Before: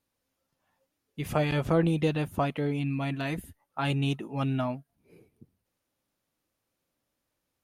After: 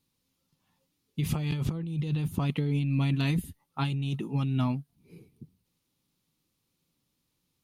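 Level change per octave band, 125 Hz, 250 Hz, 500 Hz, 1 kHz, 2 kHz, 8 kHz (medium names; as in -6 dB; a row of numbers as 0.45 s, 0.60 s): +2.5 dB, -1.0 dB, -11.0 dB, -6.5 dB, -5.0 dB, no reading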